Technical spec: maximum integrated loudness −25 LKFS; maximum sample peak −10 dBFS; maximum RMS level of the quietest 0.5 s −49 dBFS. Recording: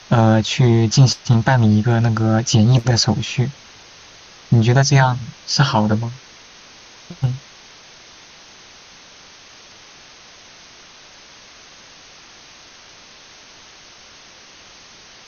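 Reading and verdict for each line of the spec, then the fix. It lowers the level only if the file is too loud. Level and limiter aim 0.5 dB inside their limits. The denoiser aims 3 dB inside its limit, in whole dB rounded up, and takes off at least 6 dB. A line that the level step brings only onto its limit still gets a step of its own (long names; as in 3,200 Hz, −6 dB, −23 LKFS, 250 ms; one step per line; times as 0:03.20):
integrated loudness −16.0 LKFS: out of spec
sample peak −2.5 dBFS: out of spec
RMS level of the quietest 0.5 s −44 dBFS: out of spec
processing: level −9.5 dB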